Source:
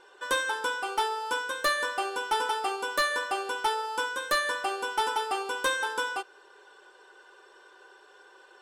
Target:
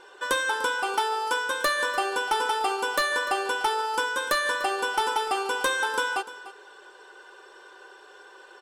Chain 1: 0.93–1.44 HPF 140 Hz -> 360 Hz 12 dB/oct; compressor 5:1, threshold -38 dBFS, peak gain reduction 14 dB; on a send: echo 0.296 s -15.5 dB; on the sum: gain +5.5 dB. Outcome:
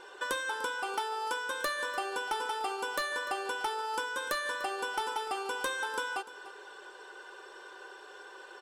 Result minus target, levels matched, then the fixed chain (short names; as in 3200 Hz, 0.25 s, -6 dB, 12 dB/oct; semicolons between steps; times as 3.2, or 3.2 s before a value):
compressor: peak gain reduction +9 dB
0.93–1.44 HPF 140 Hz -> 360 Hz 12 dB/oct; compressor 5:1, threshold -27 dBFS, peak gain reduction 5 dB; on a send: echo 0.296 s -15.5 dB; on the sum: gain +5.5 dB